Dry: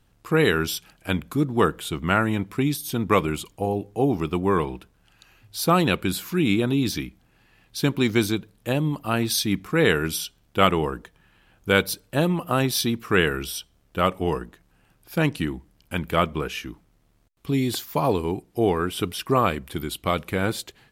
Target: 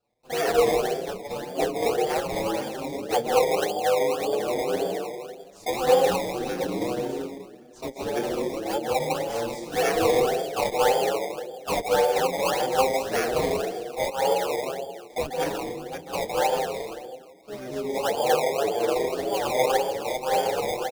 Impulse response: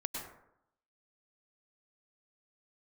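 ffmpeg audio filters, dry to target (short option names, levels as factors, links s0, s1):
-filter_complex "[0:a]asplit=3[s0][s1][s2];[s0]bandpass=f=530:t=q:w=8,volume=1[s3];[s1]bandpass=f=1840:t=q:w=8,volume=0.501[s4];[s2]bandpass=f=2480:t=q:w=8,volume=0.355[s5];[s3][s4][s5]amix=inputs=3:normalize=0,asplit=2[s6][s7];[s7]adelay=157,lowpass=f=1000:p=1,volume=0.531,asplit=2[s8][s9];[s9]adelay=157,lowpass=f=1000:p=1,volume=0.27,asplit=2[s10][s11];[s11]adelay=157,lowpass=f=1000:p=1,volume=0.27,asplit=2[s12][s13];[s13]adelay=157,lowpass=f=1000:p=1,volume=0.27[s14];[s8][s10][s12][s14]amix=inputs=4:normalize=0[s15];[s6][s15]amix=inputs=2:normalize=0,asplit=3[s16][s17][s18];[s17]asetrate=35002,aresample=44100,atempo=1.25992,volume=0.178[s19];[s18]asetrate=66075,aresample=44100,atempo=0.66742,volume=0.891[s20];[s16][s19][s20]amix=inputs=3:normalize=0[s21];[1:a]atrim=start_sample=2205,asetrate=22050,aresample=44100[s22];[s21][s22]afir=irnorm=-1:irlink=0,acrossover=split=560|4500[s23][s24][s25];[s24]acrusher=samples=21:mix=1:aa=0.000001:lfo=1:lforange=21:lforate=1.8[s26];[s23][s26][s25]amix=inputs=3:normalize=0,asplit=2[s27][s28];[s28]adelay=6.6,afreqshift=1.6[s29];[s27][s29]amix=inputs=2:normalize=1,volume=1.5"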